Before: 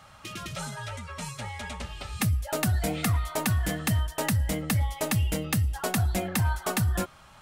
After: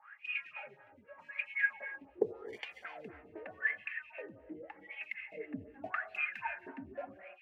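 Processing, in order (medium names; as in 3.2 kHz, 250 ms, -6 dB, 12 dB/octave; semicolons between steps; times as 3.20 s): median filter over 5 samples; high-order bell 2.1 kHz +15 dB 1.1 oct; 2.15–2.85 s: sample-rate reducer 1.3 kHz, jitter 0%; 3.62–5.37 s: compression 2.5:1, threshold -28 dBFS, peak gain reduction 10 dB; wah-wah 0.85 Hz 270–2600 Hz, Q 17; gated-style reverb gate 350 ms flat, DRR 8 dB; lamp-driven phase shifter 3.9 Hz; trim +4.5 dB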